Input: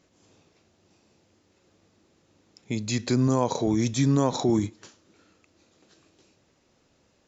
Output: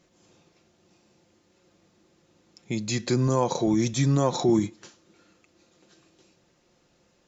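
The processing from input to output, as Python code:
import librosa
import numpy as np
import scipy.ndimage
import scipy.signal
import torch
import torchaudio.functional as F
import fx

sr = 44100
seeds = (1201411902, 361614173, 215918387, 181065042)

y = x + 0.42 * np.pad(x, (int(5.7 * sr / 1000.0), 0))[:len(x)]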